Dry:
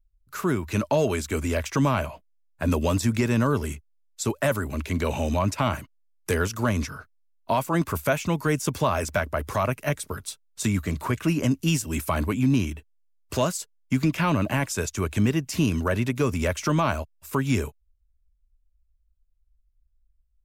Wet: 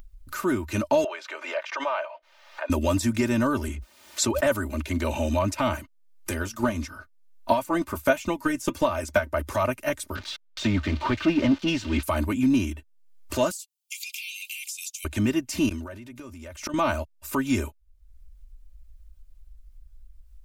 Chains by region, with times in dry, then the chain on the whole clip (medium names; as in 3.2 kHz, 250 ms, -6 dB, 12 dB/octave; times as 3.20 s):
1.04–2.70 s: inverse Chebyshev high-pass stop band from 210 Hz, stop band 50 dB + distance through air 260 m + swell ahead of each attack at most 100 dB/s
3.68–4.47 s: high-pass 47 Hz 24 dB/octave + treble shelf 6.4 kHz -11.5 dB + swell ahead of each attack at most 23 dB/s
6.30–9.33 s: transient shaper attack +9 dB, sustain 0 dB + flange 1.5 Hz, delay 3.2 ms, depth 1.8 ms, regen -68%
10.15–12.03 s: zero-crossing glitches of -22 dBFS + low-pass 4 kHz 24 dB/octave + waveshaping leveller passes 1
13.51–15.05 s: steep high-pass 2.3 kHz 96 dB/octave + treble shelf 4.5 kHz +8 dB + compression 12:1, threshold -32 dBFS
15.68–16.74 s: inverted gate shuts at -19 dBFS, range -26 dB + decay stretcher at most 53 dB/s
whole clip: comb 3.3 ms, depth 81%; upward compressor, threshold -28 dBFS; trim -2.5 dB